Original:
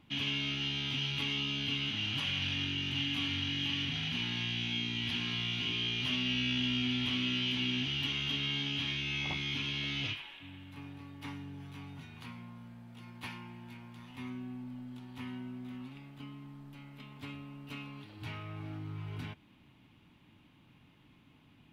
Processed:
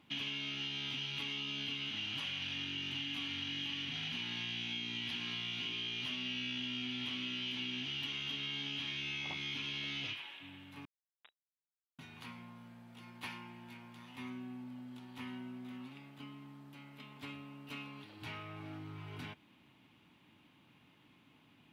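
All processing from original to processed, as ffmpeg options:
-filter_complex "[0:a]asettb=1/sr,asplit=3[a][b][c];[a]atrim=end=10.854[d];[b]atrim=start=10.85:end=11.99,asetpts=PTS-STARTPTS,afade=t=in:d=0.004:c=qsin,afade=t=out:st=1.136:d=0.004:c=qsin,bandreject=f=970:w=15,acrusher=bits=4:mix=0:aa=0.5,lowpass=f=3.3k:t=q:w=0.5098,lowpass=f=3.3k:t=q:w=0.6013,lowpass=f=3.3k:t=q:w=0.9,lowpass=f=3.3k:t=q:w=2.563,afreqshift=-3900[e];[c]atrim=start=11.986[f];[d][e]acrossfade=d=0.004:c1=hsin:c2=qsin[g];[g][f]acrossfade=d=0.004:c1=qsin:c2=hsin,highpass=f=250:p=1,acompressor=threshold=-37dB:ratio=6"

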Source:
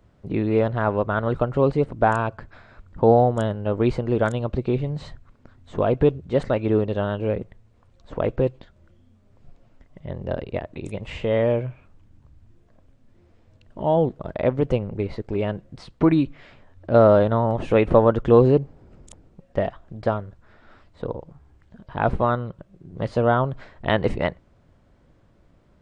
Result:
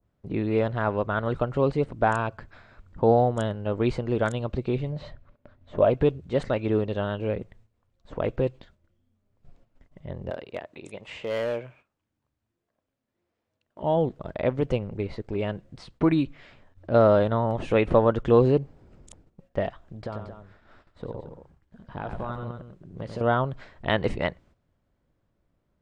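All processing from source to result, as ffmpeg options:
-filter_complex "[0:a]asettb=1/sr,asplit=3[a][b][c];[a]atrim=end=4.924[d];[b]atrim=start=4.92:end=5.9,asetpts=PTS-STARTPTS,afade=t=in:d=0.004:c=qsin,afade=t=out:st=0.976:d=0.004:c=qsin,lowpass=3.9k,equalizer=f=590:w=6.7:g=13[e];[c]atrim=start=5.896[f];[d][e]acrossfade=d=0.004:c1=hsin:c2=qsin[g];[g][f]acrossfade=d=0.004:c1=qsin:c2=hsin,asettb=1/sr,asplit=3[h][i][j];[h]atrim=end=10.304[k];[i]atrim=start=10.3:end=13.83,asetpts=PTS-STARTPTS,afade=t=in:d=0.004:c=qsin,afade=t=out:st=3.526:d=0.004:c=qsin,highpass=f=480:p=1,asoftclip=type=hard:threshold=-19dB[l];[j]atrim=start=13.826[m];[k][l]acrossfade=d=0.004:c1=hsin:c2=qsin[n];[n][m]acrossfade=d=0.004:c1=qsin:c2=hsin,asettb=1/sr,asplit=3[o][p][q];[o]atrim=end=19.994[r];[p]atrim=start=19.99:end=23.21,asetpts=PTS-STARTPTS,afade=t=in:d=0.004:c=qsin,afade=t=out:st=3.216:d=0.004:c=qsin,acompressor=threshold=-24dB:ratio=12:attack=3.2:release=140:knee=1:detection=peak,aecho=1:1:93|225:0.447|0.316,atrim=end_sample=142002[s];[q]atrim=start=23.206[t];[r][s]acrossfade=d=0.004:c1=hsin:c2=qsin[u];[u][t]acrossfade=d=0.004:c1=qsin:c2=hsin,agate=range=-11dB:threshold=-50dB:ratio=16:detection=peak,adynamicequalizer=threshold=0.0224:dfrequency=1600:dqfactor=0.7:tfrequency=1600:tqfactor=0.7:attack=5:release=100:ratio=0.375:range=2:mode=boostabove:tftype=highshelf,volume=-4dB"

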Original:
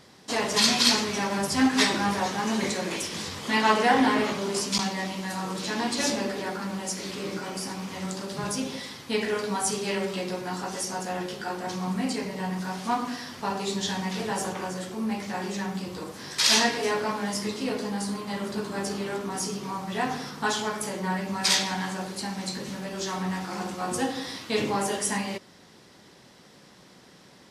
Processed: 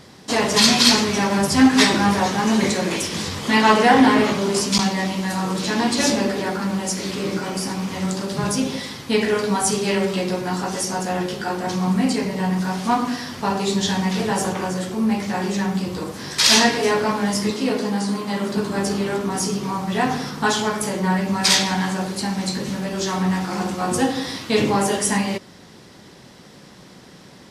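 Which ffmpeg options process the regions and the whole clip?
-filter_complex "[0:a]asettb=1/sr,asplit=3[a][b][c];[a]atrim=end=17.504[d];[b]atrim=start=17.5:end=18.57,asetpts=PTS-STARTPTS,afade=t=in:d=0.004:c=qsin,afade=t=out:st=1.066:d=0.004:c=qsin,acrossover=split=7600[e][f];[f]acompressor=threshold=-50dB:ratio=4:attack=1:release=60[g];[e][g]amix=inputs=2:normalize=0,highpass=160[h];[c]atrim=start=18.566[i];[d][h]acrossfade=d=0.004:c1=hsin:c2=qsin[j];[j][i]acrossfade=d=0.004:c1=qsin:c2=hsin,lowshelf=f=260:g=5.5,acontrast=23,volume=1.5dB"

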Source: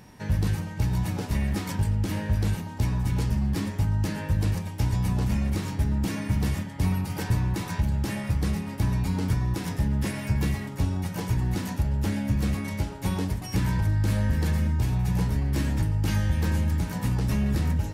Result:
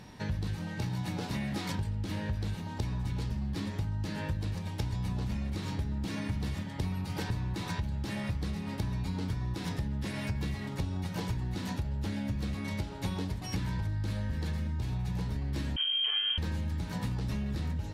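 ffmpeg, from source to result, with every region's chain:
-filter_complex "[0:a]asettb=1/sr,asplit=3[a][b][c];[a]atrim=end=0.584[d];[b]atrim=start=0.58:end=1.7,asetpts=PTS-STARTPTS,afade=t=in:d=0.004:c=qsin,afade=t=out:st=1.116:d=0.004:c=qsin,highpass=130,asplit=2[e][f];[f]adelay=23,volume=-6dB[g];[e][g]amix=inputs=2:normalize=0,atrim=end_sample=49392[h];[c]atrim=start=1.696[i];[d][h]acrossfade=d=0.004:c1=hsin:c2=qsin[j];[j][i]acrossfade=d=0.004:c1=qsin:c2=hsin,asettb=1/sr,asplit=3[k][l][m];[k]atrim=end=15.764[n];[l]atrim=start=15.76:end=16.38,asetpts=PTS-STARTPTS,afade=t=in:d=0.004:c=qsin,afade=t=out:st=0.616:d=0.004:c=qsin,acrossover=split=2600[o][p];[p]acompressor=threshold=-51dB:ratio=4:attack=1:release=60[q];[o][q]amix=inputs=2:normalize=0,highpass=110,lowpass=f=2.8k:t=q:w=0.5098,lowpass=f=2.8k:t=q:w=0.6013,lowpass=f=2.8k:t=q:w=0.9,lowpass=f=2.8k:t=q:w=2.563,afreqshift=-3300[r];[m]atrim=start=16.376[s];[n][r]acrossfade=d=0.004:c1=hsin:c2=qsin[t];[t][s]acrossfade=d=0.004:c1=qsin:c2=hsin,highshelf=f=9.4k:g=-10.5,acompressor=threshold=-31dB:ratio=5,equalizer=f=3.9k:w=2.3:g=7"

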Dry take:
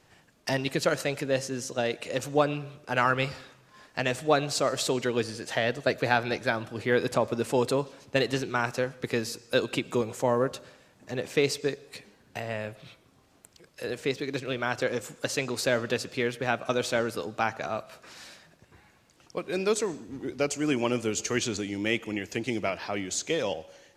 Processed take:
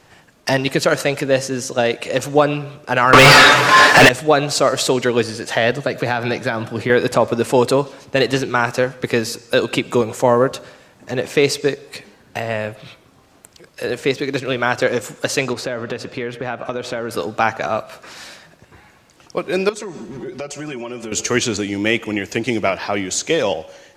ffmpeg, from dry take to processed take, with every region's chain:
-filter_complex "[0:a]asettb=1/sr,asplit=3[a][b][c];[a]atrim=end=3.134[d];[b]atrim=start=3.13:end=4.09,asetpts=PTS-STARTPTS,afade=t=in:d=0.004:c=qsin,afade=t=out:st=0.956:d=0.004:c=qsin,aecho=1:1:6.9:0.61,atrim=end_sample=42336,acontrast=67,asplit=2[e][f];[f]highpass=f=720:p=1,volume=37dB,asoftclip=type=tanh:threshold=-5.5dB[g];[e][g]amix=inputs=2:normalize=0,lowpass=f=4.1k:p=1,volume=-6dB[h];[c]atrim=start=4.086[i];[d][h]acrossfade=d=0.004:c1=hsin:c2=qsin[j];[j][i]acrossfade=d=0.004:c1=qsin:c2=hsin,asettb=1/sr,asplit=3[k][l][m];[k]atrim=end=5.724[n];[l]atrim=start=5.72:end=6.9,asetpts=PTS-STARTPTS,afade=t=in:d=0.004:c=qsin,afade=t=out:st=1.176:d=0.004:c=qsin,acompressor=threshold=-26dB:ratio=5:attack=3.2:release=140:knee=1:detection=peak,highpass=f=130:t=q:w=1.6[o];[m]atrim=start=6.896[p];[n][o]acrossfade=d=0.004:c1=hsin:c2=qsin[q];[q][p]acrossfade=d=0.004:c1=qsin:c2=hsin,asettb=1/sr,asplit=3[r][s][t];[r]atrim=end=15.534[u];[s]atrim=start=15.53:end=17.11,asetpts=PTS-STARTPTS,afade=t=in:d=0.004:c=qsin,afade=t=out:st=1.576:d=0.004:c=qsin,lowpass=f=2.3k:p=1,acompressor=threshold=-31dB:ratio=5:attack=3.2:release=140:knee=1:detection=peak[v];[t]atrim=start=17.106[w];[u][v]acrossfade=d=0.004:c1=hsin:c2=qsin[x];[x][w]acrossfade=d=0.004:c1=qsin:c2=hsin,asettb=1/sr,asplit=3[y][z][aa];[y]atrim=end=19.694[ab];[z]atrim=start=19.69:end=21.12,asetpts=PTS-STARTPTS,afade=t=in:d=0.004:c=qsin,afade=t=out:st=1.426:d=0.004:c=qsin,highshelf=f=10k:g=-8,aecho=1:1:5.4:0.81,atrim=end_sample=63063,acompressor=threshold=-36dB:ratio=8:attack=3.2:release=140:knee=1:detection=peak[ac];[aa]atrim=start=21.116[ad];[ab][ac]acrossfade=d=0.004:c1=hsin:c2=qsin[ae];[ae][ad]acrossfade=d=0.004:c1=qsin:c2=hsin,equalizer=f=1k:w=0.5:g=2.5,alimiter=level_in=10.5dB:limit=-1dB:release=50:level=0:latency=1,volume=-1dB"

